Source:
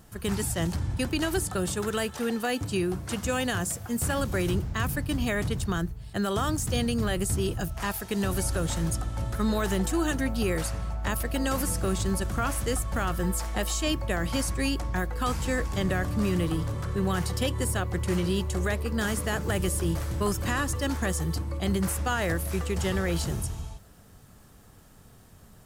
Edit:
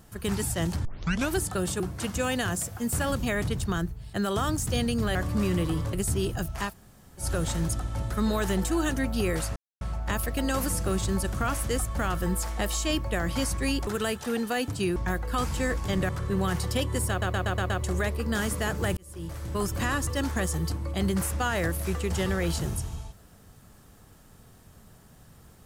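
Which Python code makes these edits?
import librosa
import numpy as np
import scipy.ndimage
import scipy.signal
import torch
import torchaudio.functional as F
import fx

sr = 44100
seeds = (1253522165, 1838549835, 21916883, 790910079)

y = fx.edit(x, sr, fx.tape_start(start_s=0.85, length_s=0.45),
    fx.move(start_s=1.8, length_s=1.09, to_s=14.84),
    fx.cut(start_s=4.32, length_s=0.91),
    fx.room_tone_fill(start_s=7.91, length_s=0.53, crossfade_s=0.1),
    fx.insert_silence(at_s=10.78, length_s=0.25),
    fx.move(start_s=15.97, length_s=0.78, to_s=7.15),
    fx.stutter_over(start_s=17.76, slice_s=0.12, count=6),
    fx.fade_in_span(start_s=19.63, length_s=0.8), tone=tone)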